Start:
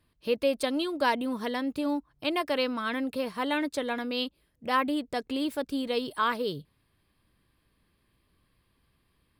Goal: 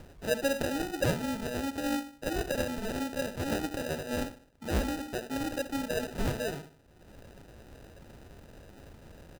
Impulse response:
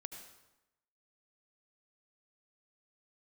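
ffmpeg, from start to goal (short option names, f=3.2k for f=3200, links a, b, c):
-af "acompressor=mode=upward:threshold=-31dB:ratio=2.5,equalizer=f=10k:w=1.4:g=14,bandreject=f=60:t=h:w=6,bandreject=f=120:t=h:w=6,bandreject=f=180:t=h:w=6,bandreject=f=240:t=h:w=6,bandreject=f=300:t=h:w=6,bandreject=f=360:t=h:w=6,aecho=1:1:73|146|219|292:0.266|0.0905|0.0308|0.0105,acrusher=samples=40:mix=1:aa=0.000001,volume=-3dB"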